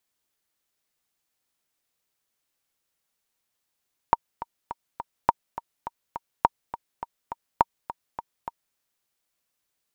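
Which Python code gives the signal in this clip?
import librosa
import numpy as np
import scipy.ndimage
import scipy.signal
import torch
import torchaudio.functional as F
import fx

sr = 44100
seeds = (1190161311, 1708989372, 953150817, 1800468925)

y = fx.click_track(sr, bpm=207, beats=4, bars=4, hz=933.0, accent_db=15.0, level_db=-3.5)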